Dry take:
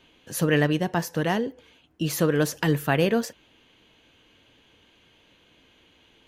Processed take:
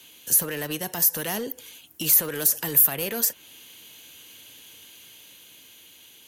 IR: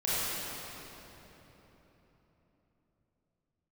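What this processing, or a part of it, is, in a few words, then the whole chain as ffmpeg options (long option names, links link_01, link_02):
FM broadcast chain: -filter_complex "[0:a]highpass=78,dynaudnorm=framelen=340:gausssize=9:maxgain=3dB,acrossover=split=390|1000|2400[link_01][link_02][link_03][link_04];[link_01]acompressor=threshold=-31dB:ratio=4[link_05];[link_02]acompressor=threshold=-27dB:ratio=4[link_06];[link_03]acompressor=threshold=-36dB:ratio=4[link_07];[link_04]acompressor=threshold=-44dB:ratio=4[link_08];[link_05][link_06][link_07][link_08]amix=inputs=4:normalize=0,aemphasis=mode=production:type=75fm,alimiter=limit=-21dB:level=0:latency=1:release=75,asoftclip=type=hard:threshold=-24.5dB,lowpass=frequency=15000:width=0.5412,lowpass=frequency=15000:width=1.3066,aemphasis=mode=production:type=75fm"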